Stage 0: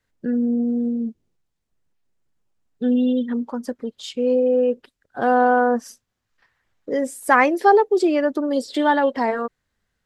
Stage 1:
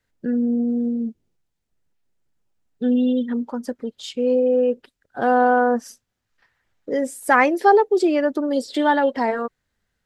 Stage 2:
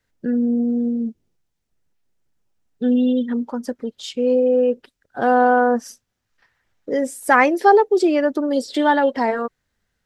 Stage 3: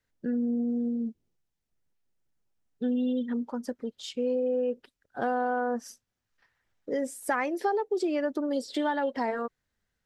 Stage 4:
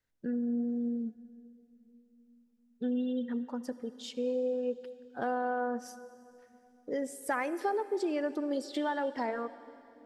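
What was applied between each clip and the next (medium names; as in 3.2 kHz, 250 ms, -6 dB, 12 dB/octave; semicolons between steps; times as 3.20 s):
band-stop 1.1 kHz, Q 14
peaking EQ 5.7 kHz +2.5 dB 0.24 oct; trim +1.5 dB
compression 5:1, threshold -17 dBFS, peak gain reduction 9.5 dB; trim -7.5 dB
reverberation RT60 3.0 s, pre-delay 60 ms, DRR 14.5 dB; trim -4 dB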